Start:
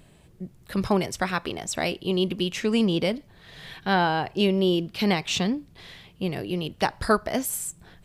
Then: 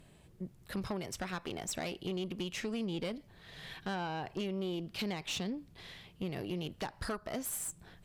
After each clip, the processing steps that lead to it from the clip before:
downward compressor 6 to 1, threshold −27 dBFS, peak gain reduction 11.5 dB
tube saturation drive 26 dB, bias 0.4
level −4 dB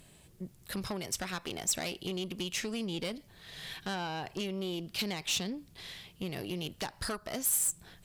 high-shelf EQ 3,300 Hz +11 dB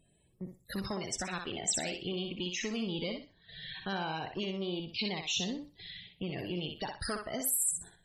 noise gate −49 dBFS, range −10 dB
spectral peaks only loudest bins 64
feedback echo with a high-pass in the loop 62 ms, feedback 26%, high-pass 360 Hz, level −4.5 dB

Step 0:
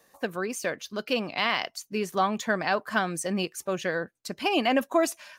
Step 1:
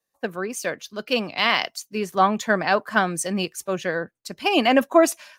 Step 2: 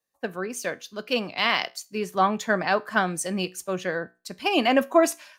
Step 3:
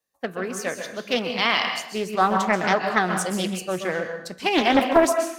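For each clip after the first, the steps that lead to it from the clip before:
multiband upward and downward expander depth 70%; level +5 dB
tuned comb filter 61 Hz, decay 0.3 s, harmonics all, mix 40%
dense smooth reverb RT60 0.69 s, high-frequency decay 0.95×, pre-delay 115 ms, DRR 5.5 dB; highs frequency-modulated by the lows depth 0.51 ms; level +1.5 dB

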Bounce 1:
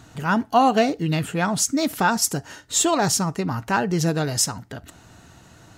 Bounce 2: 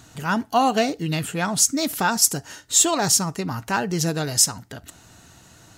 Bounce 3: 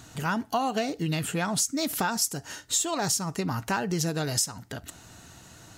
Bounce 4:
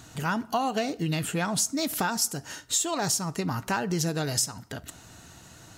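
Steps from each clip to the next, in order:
high-shelf EQ 3,500 Hz +8.5 dB; level −2.5 dB
downward compressor 6 to 1, threshold −24 dBFS, peak gain reduction 12 dB
convolution reverb, pre-delay 6 ms, DRR 20.5 dB

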